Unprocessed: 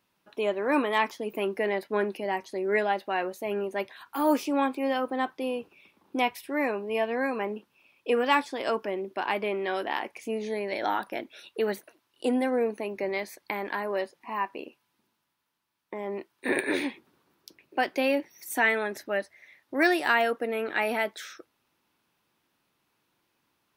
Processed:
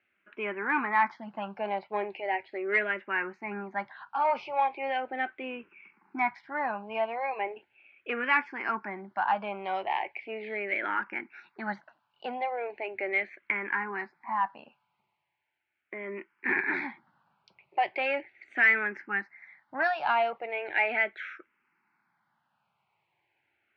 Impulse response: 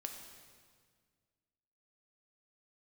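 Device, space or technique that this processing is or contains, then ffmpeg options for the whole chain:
barber-pole phaser into a guitar amplifier: -filter_complex "[0:a]asplit=2[link_01][link_02];[link_02]afreqshift=-0.38[link_03];[link_01][link_03]amix=inputs=2:normalize=1,asoftclip=type=tanh:threshold=-19dB,lowpass=5300,highpass=100,equalizer=frequency=280:width_type=q:width=4:gain=-8,equalizer=frequency=480:width_type=q:width=4:gain=-9,equalizer=frequency=830:width_type=q:width=4:gain=7,equalizer=frequency=1500:width_type=q:width=4:gain=7,equalizer=frequency=2200:width_type=q:width=4:gain=9,equalizer=frequency=3600:width_type=q:width=4:gain=-8,lowpass=frequency=3800:width=0.5412,lowpass=frequency=3800:width=1.3066"

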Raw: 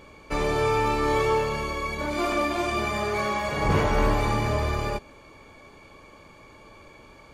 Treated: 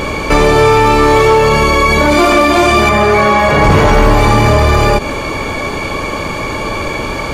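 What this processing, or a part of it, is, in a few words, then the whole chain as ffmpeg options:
loud club master: -filter_complex "[0:a]acompressor=threshold=-27dB:ratio=2.5,asoftclip=type=hard:threshold=-22.5dB,alimiter=level_in=32dB:limit=-1dB:release=50:level=0:latency=1,asettb=1/sr,asplit=3[link_01][link_02][link_03];[link_01]atrim=end=2.894[link_04];[link_02]atrim=start=2.89:end=3.64,asetpts=PTS-STARTPTS,afade=type=in:duration=0.004:curve=qsin,afade=type=out:start_time=0.746:duration=0.004:curve=qsin,acrossover=split=3000[link_05][link_06];[link_06]acompressor=threshold=-26dB:ratio=4:attack=1:release=60[link_07];[link_05][link_07]amix=inputs=2:normalize=0[link_08];[link_03]atrim=start=3.636[link_09];[link_04][link_08]acrossfade=duration=0.004:curve1=hsin:curve2=qsin[link_10];[link_10][link_09]acrossfade=duration=0.004:curve1=qsin:curve2=hsin,volume=-1dB"

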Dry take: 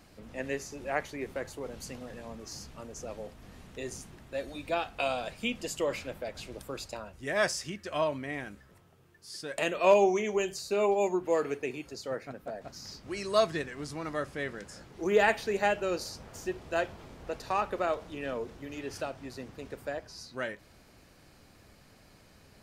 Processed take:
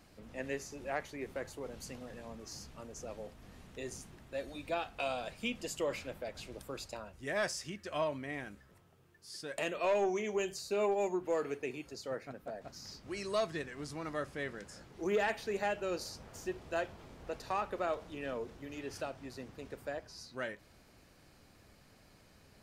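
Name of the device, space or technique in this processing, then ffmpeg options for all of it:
soft clipper into limiter: -af "asoftclip=type=tanh:threshold=-16.5dB,alimiter=limit=-20dB:level=0:latency=1:release=401,volume=-4dB"

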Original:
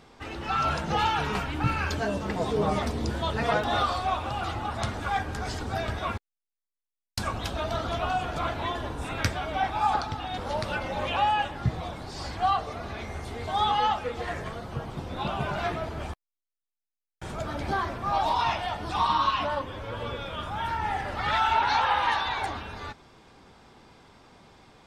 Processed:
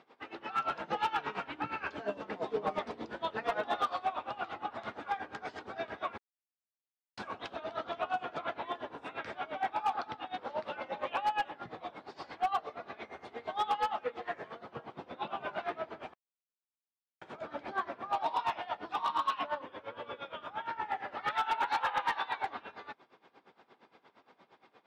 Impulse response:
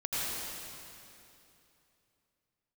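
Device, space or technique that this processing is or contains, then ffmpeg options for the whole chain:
helicopter radio: -af "highpass=310,lowpass=3000,aeval=exprs='val(0)*pow(10,-18*(0.5-0.5*cos(2*PI*8.6*n/s))/20)':channel_layout=same,asoftclip=type=hard:threshold=-22.5dB,volume=-1.5dB"

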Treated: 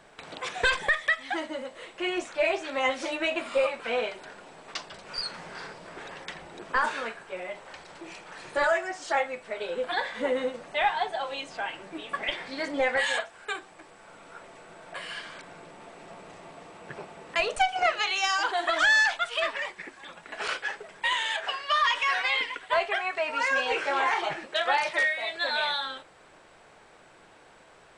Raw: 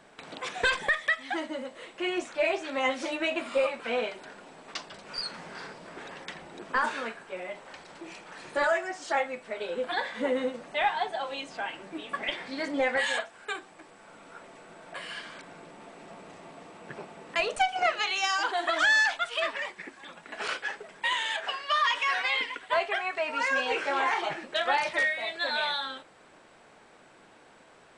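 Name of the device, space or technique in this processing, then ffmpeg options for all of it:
low shelf boost with a cut just above: -filter_complex "[0:a]asettb=1/sr,asplit=3[link_01][link_02][link_03];[link_01]atrim=end=24.464[link_04];[link_02]atrim=start=24.46:end=25.33,asetpts=PTS-STARTPTS,afade=type=in:duration=0.004:curve=qsin,afade=type=out:start_time=0.866:duration=0.004:curve=qsin,highpass=frequency=210:poles=1[link_05];[link_03]atrim=start=25.326[link_06];[link_04][link_05]acrossfade=duration=0.004:curve1=hsin:curve2=qsin[link_07];[link_07][link_06]acrossfade=duration=0.004:curve1=qsin:curve2=hsin,lowshelf=frequency=73:gain=6.5,equalizer=frequency=240:width_type=o:width=0.75:gain=-5.5,volume=1.5dB"

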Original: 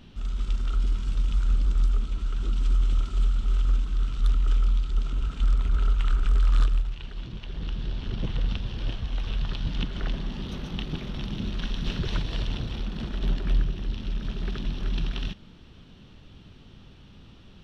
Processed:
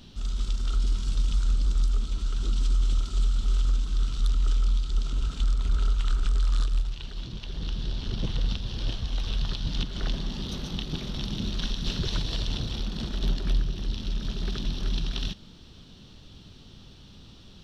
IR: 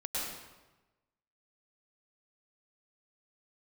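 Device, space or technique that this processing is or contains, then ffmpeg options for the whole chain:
over-bright horn tweeter: -af "highshelf=frequency=3200:width_type=q:width=1.5:gain=7.5,alimiter=limit=-16.5dB:level=0:latency=1:release=192"

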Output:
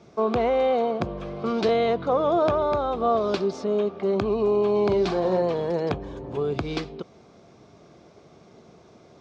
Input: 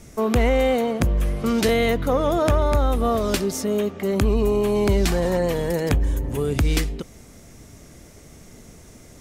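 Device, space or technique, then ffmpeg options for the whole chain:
kitchen radio: -filter_complex "[0:a]asettb=1/sr,asplit=3[link_01][link_02][link_03];[link_01]atrim=end=4.844[link_04];[link_02]atrim=start=4.84:end=5.42,asetpts=PTS-STARTPTS,afade=type=in:duration=0.004:curve=qsin,afade=type=out:start_time=0.576:duration=0.004:curve=qsin,asplit=2[link_05][link_06];[link_06]adelay=43,volume=-9dB[link_07];[link_05][link_07]amix=inputs=2:normalize=0,atrim=end_sample=25578[link_08];[link_03]atrim=start=5.416[link_09];[link_04][link_08]acrossfade=duration=0.004:curve1=hsin:curve2=qsin[link_10];[link_10][link_09]acrossfade=duration=0.004:curve1=qsin:curve2=hsin,highpass=160,equalizer=frequency=260:width_type=q:width=4:gain=-6,equalizer=frequency=380:width_type=q:width=4:gain=4,equalizer=frequency=710:width_type=q:width=4:gain=5,equalizer=frequency=1100:width_type=q:width=4:gain=4,equalizer=frequency=1900:width_type=q:width=4:gain=-10,equalizer=frequency=2900:width_type=q:width=4:gain=-5,lowpass=frequency=4400:width=0.5412,lowpass=frequency=4400:width=1.3066,volume=-2.5dB"

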